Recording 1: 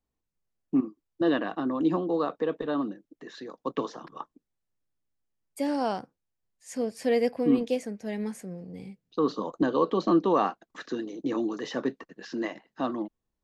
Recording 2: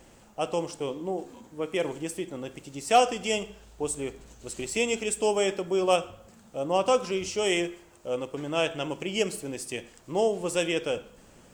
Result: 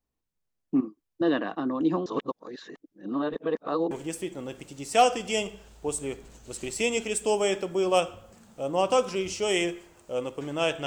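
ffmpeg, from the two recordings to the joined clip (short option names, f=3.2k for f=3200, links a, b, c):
-filter_complex "[0:a]apad=whole_dur=10.86,atrim=end=10.86,asplit=2[a][b];[a]atrim=end=2.062[c];[b]atrim=start=2.058:end=3.912,asetpts=PTS-STARTPTS,areverse[d];[1:a]atrim=start=1.868:end=8.82[e];[c][d]acrossfade=d=0.004:c1=hsin:c2=hsin[f];[f][e]acrossfade=d=0.004:c1=hsin:c2=hsin"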